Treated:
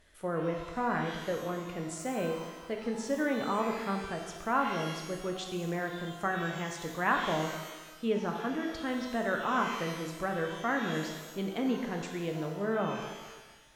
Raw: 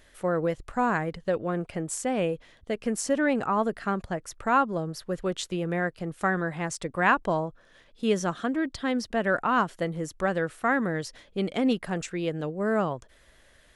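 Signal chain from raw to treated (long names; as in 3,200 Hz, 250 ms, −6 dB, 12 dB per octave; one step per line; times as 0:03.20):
pitch vibrato 2 Hz 17 cents
treble cut that deepens with the level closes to 2,500 Hz, closed at −21.5 dBFS
reverb with rising layers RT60 1.2 s, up +12 semitones, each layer −8 dB, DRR 2.5 dB
level −7 dB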